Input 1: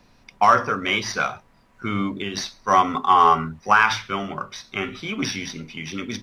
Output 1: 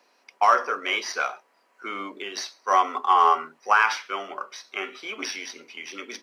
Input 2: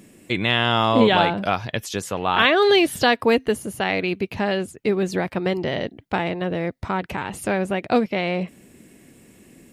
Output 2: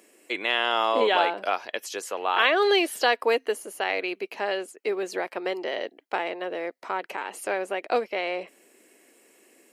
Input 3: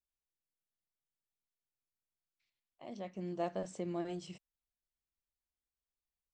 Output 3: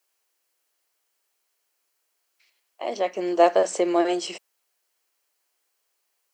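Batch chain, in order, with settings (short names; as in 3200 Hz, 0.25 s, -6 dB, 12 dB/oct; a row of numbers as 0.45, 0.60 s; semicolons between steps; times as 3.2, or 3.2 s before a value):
HPF 370 Hz 24 dB/oct; notch 3600 Hz, Q 11; normalise peaks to -6 dBFS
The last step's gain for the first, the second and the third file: -3.0, -3.5, +21.0 dB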